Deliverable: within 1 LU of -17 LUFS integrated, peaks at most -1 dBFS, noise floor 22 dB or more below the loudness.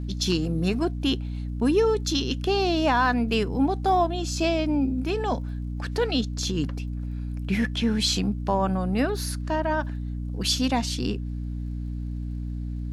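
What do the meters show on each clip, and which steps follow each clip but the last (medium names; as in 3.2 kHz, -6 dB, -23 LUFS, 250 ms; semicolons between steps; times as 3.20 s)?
tick rate 33 per s; hum 60 Hz; highest harmonic 300 Hz; hum level -28 dBFS; loudness -26.0 LUFS; peak level -11.0 dBFS; loudness target -17.0 LUFS
-> de-click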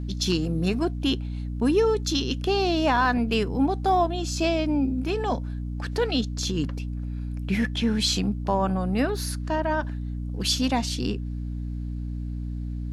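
tick rate 0 per s; hum 60 Hz; highest harmonic 300 Hz; hum level -28 dBFS
-> de-hum 60 Hz, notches 5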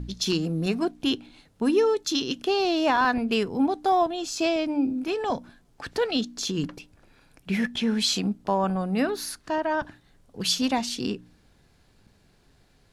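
hum not found; loudness -26.0 LUFS; peak level -12.0 dBFS; loudness target -17.0 LUFS
-> trim +9 dB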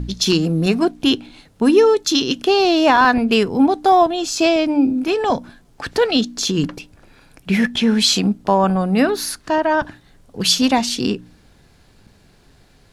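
loudness -17.0 LUFS; peak level -3.0 dBFS; noise floor -52 dBFS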